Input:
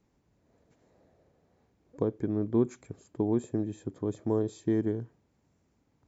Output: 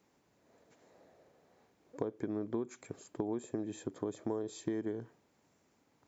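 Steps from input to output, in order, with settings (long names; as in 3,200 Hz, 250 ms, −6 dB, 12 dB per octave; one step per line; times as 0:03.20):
high-pass filter 480 Hz 6 dB per octave
downward compressor 8 to 1, threshold −38 dBFS, peak gain reduction 13.5 dB
level +5.5 dB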